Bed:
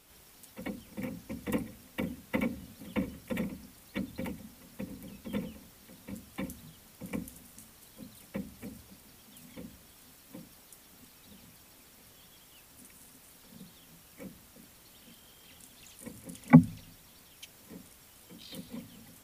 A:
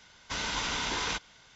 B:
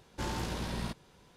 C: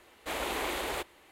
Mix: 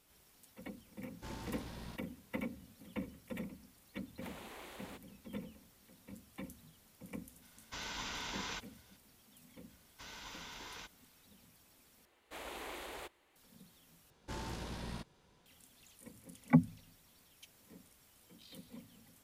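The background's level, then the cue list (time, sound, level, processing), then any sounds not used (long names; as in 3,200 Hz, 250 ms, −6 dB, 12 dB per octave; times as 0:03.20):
bed −9 dB
0:01.04: mix in B −12 dB
0:03.95: mix in C −18 dB
0:07.42: mix in A −10.5 dB
0:09.69: mix in A −17.5 dB
0:12.05: overwrite with C −12.5 dB
0:14.10: overwrite with B −7.5 dB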